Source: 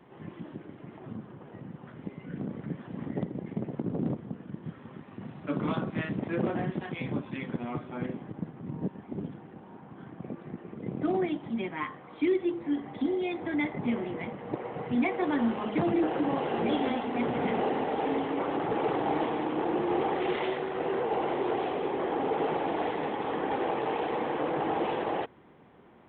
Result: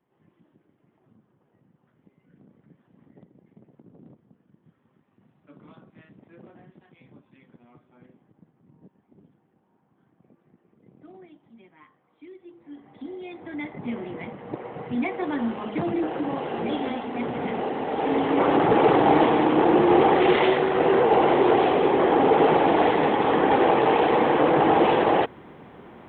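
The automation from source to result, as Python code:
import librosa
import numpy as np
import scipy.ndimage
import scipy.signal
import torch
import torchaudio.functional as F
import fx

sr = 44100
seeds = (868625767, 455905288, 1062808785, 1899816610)

y = fx.gain(x, sr, db=fx.line((12.37, -19.5), (12.93, -9.5), (14.15, 0.5), (17.76, 0.5), (18.46, 11.0)))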